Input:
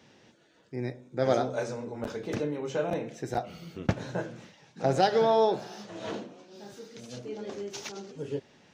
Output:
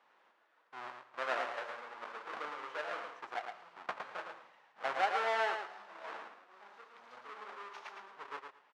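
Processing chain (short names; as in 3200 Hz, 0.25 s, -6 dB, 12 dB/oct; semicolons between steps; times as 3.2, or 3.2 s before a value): half-waves squared off; ladder band-pass 1300 Hz, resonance 30%; feedback echo 0.111 s, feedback 17%, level -6 dB; gain +2.5 dB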